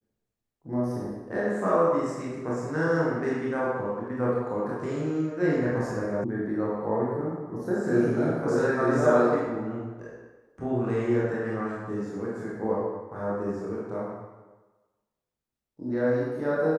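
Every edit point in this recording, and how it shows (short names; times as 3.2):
6.24 sound cut off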